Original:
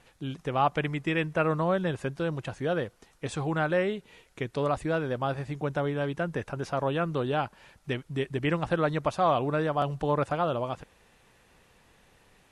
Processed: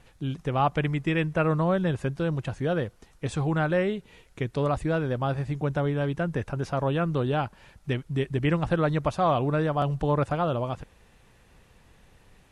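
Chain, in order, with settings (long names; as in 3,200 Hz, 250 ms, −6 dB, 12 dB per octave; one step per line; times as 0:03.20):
low-shelf EQ 170 Hz +10 dB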